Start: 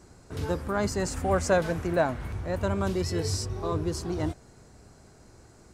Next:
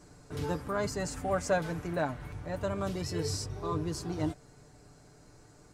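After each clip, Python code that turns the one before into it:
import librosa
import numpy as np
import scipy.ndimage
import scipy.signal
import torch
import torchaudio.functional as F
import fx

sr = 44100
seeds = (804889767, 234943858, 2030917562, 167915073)

y = fx.rider(x, sr, range_db=5, speed_s=2.0)
y = y + 0.54 * np.pad(y, (int(6.8 * sr / 1000.0), 0))[:len(y)]
y = y * 10.0 ** (-6.0 / 20.0)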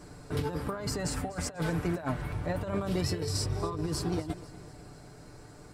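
y = fx.peak_eq(x, sr, hz=6500.0, db=-7.5, octaves=0.36)
y = fx.over_compress(y, sr, threshold_db=-35.0, ratio=-0.5)
y = fx.echo_feedback(y, sr, ms=246, feedback_pct=55, wet_db=-18.0)
y = y * 10.0 ** (4.0 / 20.0)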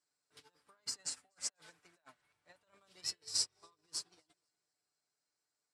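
y = fx.weighting(x, sr, curve='ITU-R 468')
y = fx.upward_expand(y, sr, threshold_db=-42.0, expansion=2.5)
y = y * 10.0 ** (-8.0 / 20.0)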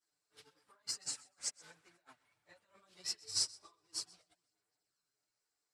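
y = fx.chorus_voices(x, sr, voices=4, hz=0.79, base_ms=14, depth_ms=5.0, mix_pct=70)
y = y + 10.0 ** (-22.0 / 20.0) * np.pad(y, (int(127 * sr / 1000.0), 0))[:len(y)]
y = y * 10.0 ** (2.5 / 20.0)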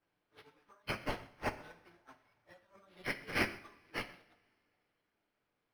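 y = np.repeat(x[::6], 6)[:len(x)]
y = fx.lowpass(y, sr, hz=1700.0, slope=6)
y = fx.rev_double_slope(y, sr, seeds[0], early_s=0.51, late_s=2.5, knee_db=-22, drr_db=9.0)
y = y * 10.0 ** (5.5 / 20.0)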